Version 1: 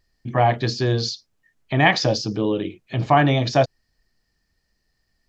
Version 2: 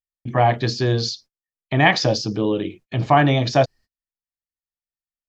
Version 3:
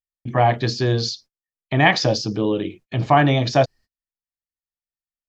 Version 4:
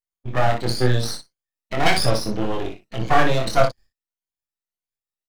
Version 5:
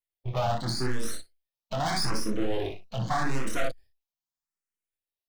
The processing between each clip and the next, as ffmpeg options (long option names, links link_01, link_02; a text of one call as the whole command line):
ffmpeg -i in.wav -af "agate=range=-36dB:threshold=-44dB:ratio=16:detection=peak,volume=1dB" out.wav
ffmpeg -i in.wav -af anull out.wav
ffmpeg -i in.wav -af "afftfilt=real='re*pow(10,13/40*sin(2*PI*(1.9*log(max(b,1)*sr/1024/100)/log(2)-(1.7)*(pts-256)/sr)))':imag='im*pow(10,13/40*sin(2*PI*(1.9*log(max(b,1)*sr/1024/100)/log(2)-(1.7)*(pts-256)/sr)))':win_size=1024:overlap=0.75,aeval=exprs='max(val(0),0)':channel_layout=same,aecho=1:1:24|60:0.596|0.447,volume=-1dB" out.wav
ffmpeg -i in.wav -filter_complex "[0:a]asoftclip=type=tanh:threshold=-15.5dB,asplit=2[link_01][link_02];[link_02]afreqshift=0.81[link_03];[link_01][link_03]amix=inputs=2:normalize=1" out.wav